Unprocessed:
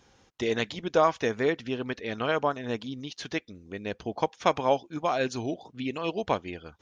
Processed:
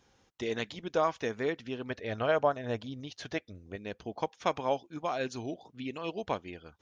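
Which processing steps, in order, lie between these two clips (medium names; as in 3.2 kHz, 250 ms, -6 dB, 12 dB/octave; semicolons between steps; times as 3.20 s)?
1.90–3.76 s: fifteen-band graphic EQ 100 Hz +11 dB, 630 Hz +9 dB, 1.6 kHz +3 dB; trim -6 dB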